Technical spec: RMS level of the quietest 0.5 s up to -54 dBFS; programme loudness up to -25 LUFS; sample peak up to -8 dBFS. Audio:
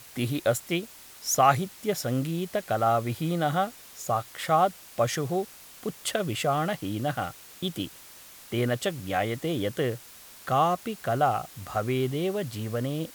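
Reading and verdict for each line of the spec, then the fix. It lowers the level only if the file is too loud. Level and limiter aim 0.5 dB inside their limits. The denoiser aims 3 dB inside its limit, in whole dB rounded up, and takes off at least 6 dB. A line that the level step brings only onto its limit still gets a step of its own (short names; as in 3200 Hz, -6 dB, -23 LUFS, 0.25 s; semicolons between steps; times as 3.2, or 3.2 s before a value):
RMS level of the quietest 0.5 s -49 dBFS: fail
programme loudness -28.0 LUFS: OK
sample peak -7.0 dBFS: fail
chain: denoiser 8 dB, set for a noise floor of -49 dBFS; limiter -8.5 dBFS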